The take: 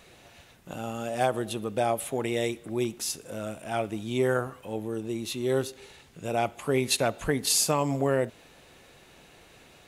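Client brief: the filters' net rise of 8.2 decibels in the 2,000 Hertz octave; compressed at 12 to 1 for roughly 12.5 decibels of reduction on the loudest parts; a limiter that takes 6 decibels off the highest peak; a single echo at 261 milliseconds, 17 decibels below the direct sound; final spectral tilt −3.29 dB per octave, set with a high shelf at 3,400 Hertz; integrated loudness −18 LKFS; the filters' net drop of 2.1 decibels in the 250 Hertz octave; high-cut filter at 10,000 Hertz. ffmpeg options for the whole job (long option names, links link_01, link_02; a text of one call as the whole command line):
ffmpeg -i in.wav -af "lowpass=10000,equalizer=frequency=250:width_type=o:gain=-3,equalizer=frequency=2000:width_type=o:gain=8.5,highshelf=frequency=3400:gain=7,acompressor=threshold=-28dB:ratio=12,alimiter=limit=-22.5dB:level=0:latency=1,aecho=1:1:261:0.141,volume=17dB" out.wav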